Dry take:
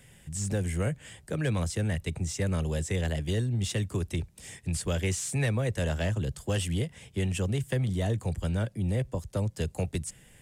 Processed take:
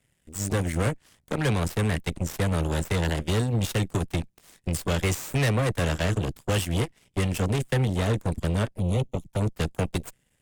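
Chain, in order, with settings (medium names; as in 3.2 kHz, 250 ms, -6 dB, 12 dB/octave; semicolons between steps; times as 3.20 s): Chebyshev shaper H 7 -16 dB, 8 -20 dB, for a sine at -18.5 dBFS; 8.71–9.41 s: touch-sensitive flanger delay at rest 5.8 ms, full sweep at -28.5 dBFS; trim +3.5 dB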